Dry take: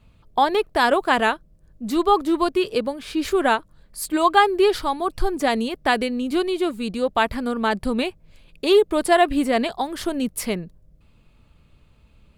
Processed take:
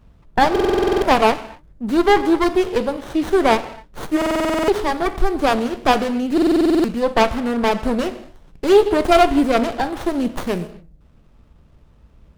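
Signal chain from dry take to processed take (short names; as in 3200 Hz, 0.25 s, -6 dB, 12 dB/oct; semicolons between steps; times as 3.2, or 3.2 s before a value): non-linear reverb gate 0.29 s falling, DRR 9.5 dB; stuck buffer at 0.51/4.17/6.33, samples 2048, times 10; running maximum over 17 samples; gain +4.5 dB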